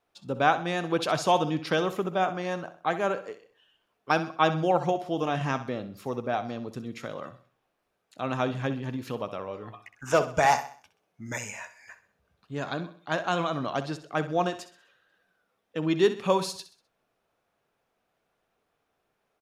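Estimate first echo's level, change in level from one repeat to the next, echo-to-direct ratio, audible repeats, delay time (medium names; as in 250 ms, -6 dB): -13.0 dB, -8.0 dB, -12.0 dB, 3, 64 ms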